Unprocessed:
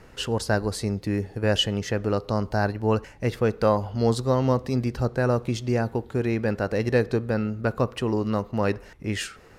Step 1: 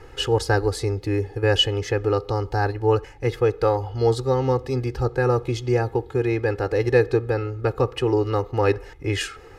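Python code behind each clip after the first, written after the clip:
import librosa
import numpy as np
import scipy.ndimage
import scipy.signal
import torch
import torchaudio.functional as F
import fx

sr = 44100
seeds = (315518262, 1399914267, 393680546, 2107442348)

y = fx.high_shelf(x, sr, hz=5400.0, db=-6.0)
y = y + 0.99 * np.pad(y, (int(2.4 * sr / 1000.0), 0))[:len(y)]
y = fx.rider(y, sr, range_db=3, speed_s=2.0)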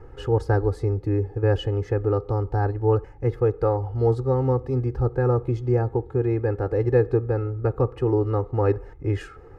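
y = fx.curve_eq(x, sr, hz=(130.0, 1300.0, 3200.0), db=(0, -7, -21))
y = y * 10.0 ** (2.0 / 20.0)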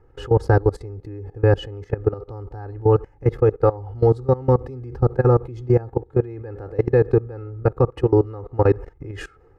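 y = fx.level_steps(x, sr, step_db=20)
y = y * 10.0 ** (7.0 / 20.0)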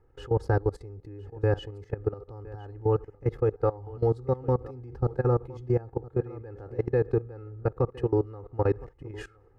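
y = x + 10.0 ** (-19.5 / 20.0) * np.pad(x, (int(1013 * sr / 1000.0), 0))[:len(x)]
y = y * 10.0 ** (-8.5 / 20.0)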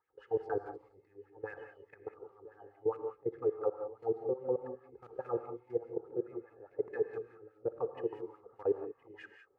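y = fx.quant_companded(x, sr, bits=8)
y = fx.wah_lfo(y, sr, hz=4.8, low_hz=390.0, high_hz=2300.0, q=3.8)
y = fx.rev_gated(y, sr, seeds[0], gate_ms=210, shape='rising', drr_db=6.0)
y = y * 10.0 ** (-2.0 / 20.0)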